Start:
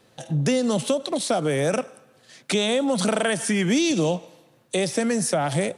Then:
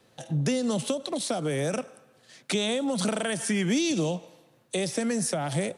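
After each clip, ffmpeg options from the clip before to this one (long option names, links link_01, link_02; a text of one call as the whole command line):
ffmpeg -i in.wav -filter_complex "[0:a]acrossover=split=300|3000[link_01][link_02][link_03];[link_02]acompressor=threshold=-26dB:ratio=2.5[link_04];[link_01][link_04][link_03]amix=inputs=3:normalize=0,volume=-3.5dB" out.wav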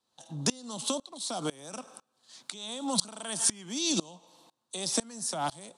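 ffmpeg -i in.wav -af "equalizer=frequency=125:width_type=o:width=1:gain=-8,equalizer=frequency=250:width_type=o:width=1:gain=3,equalizer=frequency=500:width_type=o:width=1:gain=-6,equalizer=frequency=1000:width_type=o:width=1:gain=12,equalizer=frequency=2000:width_type=o:width=1:gain=-8,equalizer=frequency=4000:width_type=o:width=1:gain=10,equalizer=frequency=8000:width_type=o:width=1:gain=9,aeval=exprs='val(0)*pow(10,-25*if(lt(mod(-2*n/s,1),2*abs(-2)/1000),1-mod(-2*n/s,1)/(2*abs(-2)/1000),(mod(-2*n/s,1)-2*abs(-2)/1000)/(1-2*abs(-2)/1000))/20)':channel_layout=same" out.wav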